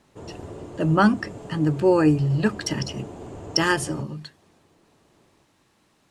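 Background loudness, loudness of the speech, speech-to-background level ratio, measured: -39.0 LUFS, -22.5 LUFS, 16.5 dB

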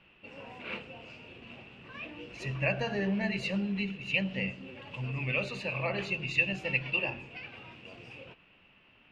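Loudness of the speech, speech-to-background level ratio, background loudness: -31.5 LUFS, 14.5 dB, -46.0 LUFS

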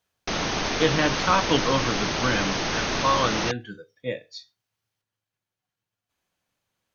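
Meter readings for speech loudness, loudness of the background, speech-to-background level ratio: -26.0 LUFS, -26.0 LUFS, 0.0 dB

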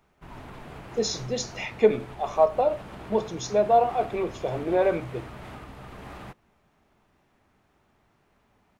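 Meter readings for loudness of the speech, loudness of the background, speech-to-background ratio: -25.5 LUFS, -42.5 LUFS, 17.0 dB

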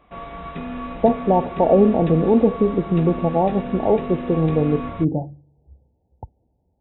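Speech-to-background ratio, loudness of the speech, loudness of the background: 12.0 dB, -19.5 LUFS, -31.5 LUFS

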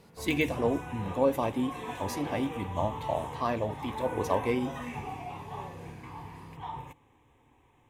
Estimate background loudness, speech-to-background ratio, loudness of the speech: -40.0 LUFS, 8.5 dB, -31.5 LUFS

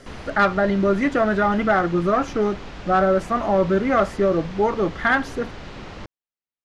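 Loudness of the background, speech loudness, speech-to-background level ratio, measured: -37.5 LUFS, -20.5 LUFS, 17.0 dB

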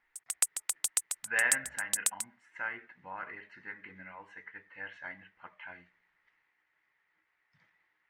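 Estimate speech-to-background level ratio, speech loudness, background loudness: -5.0 dB, -37.5 LUFS, -32.5 LUFS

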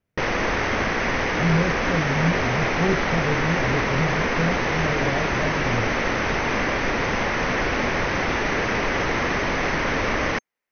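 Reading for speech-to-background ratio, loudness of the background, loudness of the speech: -4.0 dB, -23.0 LUFS, -27.0 LUFS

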